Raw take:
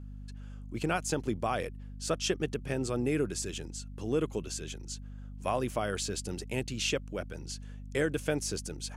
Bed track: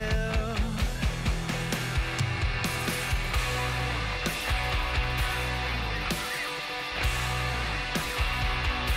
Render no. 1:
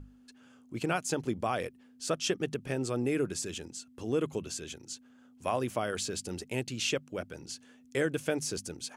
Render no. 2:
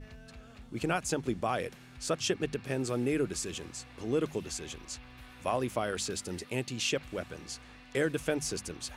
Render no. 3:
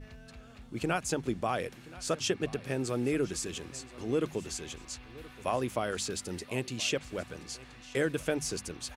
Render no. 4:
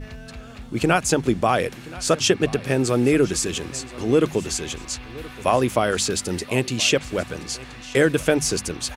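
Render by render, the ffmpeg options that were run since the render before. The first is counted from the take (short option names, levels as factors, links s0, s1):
-af "bandreject=f=50:t=h:w=6,bandreject=f=100:t=h:w=6,bandreject=f=150:t=h:w=6,bandreject=f=200:t=h:w=6"
-filter_complex "[1:a]volume=0.0668[s0];[0:a][s0]amix=inputs=2:normalize=0"
-af "aecho=1:1:1025:0.106"
-af "volume=3.98"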